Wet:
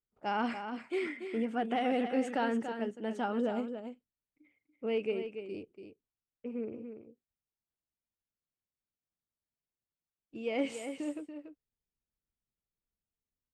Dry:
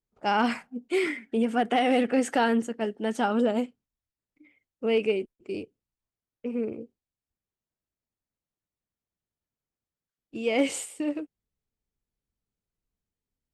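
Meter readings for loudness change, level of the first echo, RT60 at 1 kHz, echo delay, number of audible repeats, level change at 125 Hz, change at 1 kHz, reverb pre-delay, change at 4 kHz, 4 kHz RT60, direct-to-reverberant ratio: -8.0 dB, -8.5 dB, no reverb, 286 ms, 1, -7.5 dB, -7.5 dB, no reverb, -10.0 dB, no reverb, no reverb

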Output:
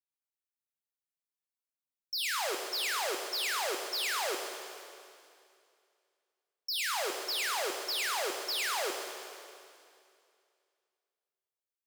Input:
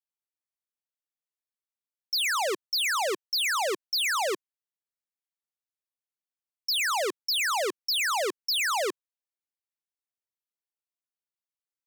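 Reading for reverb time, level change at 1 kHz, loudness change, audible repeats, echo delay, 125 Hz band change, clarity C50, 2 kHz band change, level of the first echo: 2.4 s, -6.0 dB, -6.0 dB, no echo, no echo, no reading, 4.0 dB, -6.0 dB, no echo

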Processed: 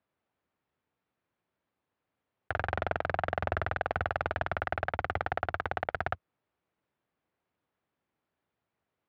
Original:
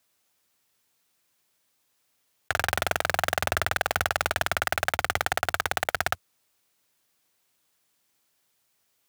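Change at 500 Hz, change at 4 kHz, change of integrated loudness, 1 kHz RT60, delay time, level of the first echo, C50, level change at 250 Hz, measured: -3.0 dB, -17.0 dB, -6.5 dB, no reverb, no echo, no echo, no reverb, -1.5 dB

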